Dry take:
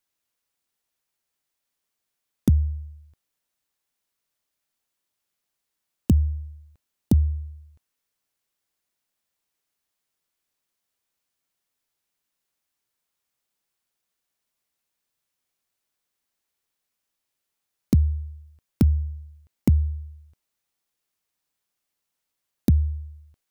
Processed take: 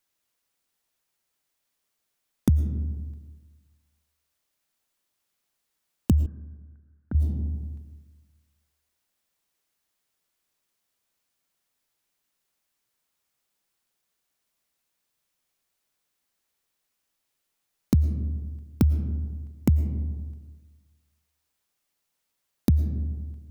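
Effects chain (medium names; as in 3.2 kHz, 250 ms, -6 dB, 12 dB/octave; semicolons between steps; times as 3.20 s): algorithmic reverb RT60 1.3 s, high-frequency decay 0.4×, pre-delay 70 ms, DRR 11 dB; in parallel at +1 dB: compression, threshold -29 dBFS, peak gain reduction 14 dB; 6.26–7.15 s: on the sum: four-pole ladder low-pass 1.6 kHz, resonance 85%; trim -4 dB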